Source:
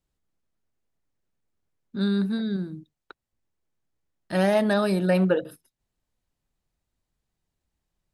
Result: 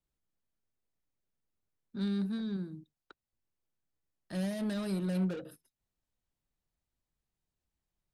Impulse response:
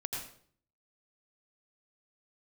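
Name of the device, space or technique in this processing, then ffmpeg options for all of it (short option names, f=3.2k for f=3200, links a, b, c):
one-band saturation: -filter_complex "[0:a]acrossover=split=280|4000[a][b][c];[b]asoftclip=type=tanh:threshold=-34.5dB[d];[a][d][c]amix=inputs=3:normalize=0,volume=-7.5dB"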